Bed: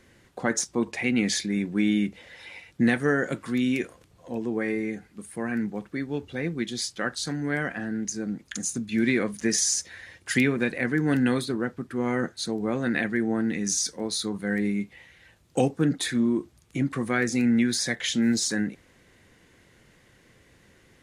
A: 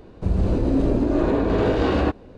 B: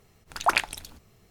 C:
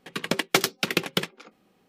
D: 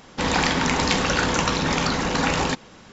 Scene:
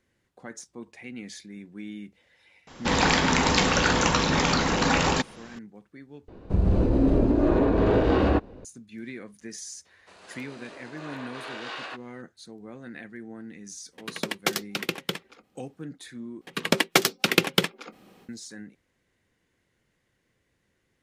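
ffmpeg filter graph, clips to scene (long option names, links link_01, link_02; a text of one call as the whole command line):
ffmpeg -i bed.wav -i cue0.wav -i cue1.wav -i cue2.wav -i cue3.wav -filter_complex "[1:a]asplit=2[link_01][link_02];[3:a]asplit=2[link_03][link_04];[0:a]volume=-15.5dB[link_05];[link_01]highshelf=frequency=4100:gain=-8[link_06];[link_02]highpass=1500[link_07];[link_04]dynaudnorm=framelen=130:gausssize=3:maxgain=11.5dB[link_08];[link_05]asplit=3[link_09][link_10][link_11];[link_09]atrim=end=6.284[link_12];[link_06]atrim=end=2.37,asetpts=PTS-STARTPTS,volume=-1dB[link_13];[link_10]atrim=start=8.646:end=16.414[link_14];[link_08]atrim=end=1.88,asetpts=PTS-STARTPTS,volume=-1.5dB[link_15];[link_11]atrim=start=18.286[link_16];[4:a]atrim=end=2.92,asetpts=PTS-STARTPTS,volume=-0.5dB,afade=type=in:duration=0.004:curve=hsin,afade=type=out:start_time=2.916:duration=0.004:curve=hsin,adelay=2670[link_17];[link_07]atrim=end=2.37,asetpts=PTS-STARTPTS,volume=-3dB,afade=type=in:duration=0.004:curve=hsin,afade=type=out:start_time=2.366:duration=0.004:curve=hsin,adelay=9850[link_18];[link_03]atrim=end=1.88,asetpts=PTS-STARTPTS,volume=-5dB,afade=type=in:duration=0.004:curve=hsin,afade=type=out:start_time=1.876:duration=0.004:curve=hsin,adelay=13920[link_19];[link_12][link_13]acrossfade=duration=0.004:curve1=hsin:curve2=hsin[link_20];[link_20][link_14]acrossfade=duration=0.004:curve1=hsin:curve2=hsin[link_21];[link_21][link_15]acrossfade=duration=0.004:curve1=hsin:curve2=hsin[link_22];[link_22][link_16]acrossfade=duration=0.004:curve1=hsin:curve2=hsin[link_23];[link_23][link_17][link_18][link_19]amix=inputs=4:normalize=0" out.wav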